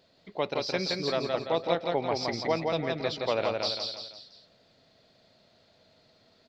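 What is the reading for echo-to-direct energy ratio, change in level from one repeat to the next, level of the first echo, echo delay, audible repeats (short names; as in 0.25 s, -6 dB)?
-2.0 dB, -7.0 dB, -3.0 dB, 0.169 s, 4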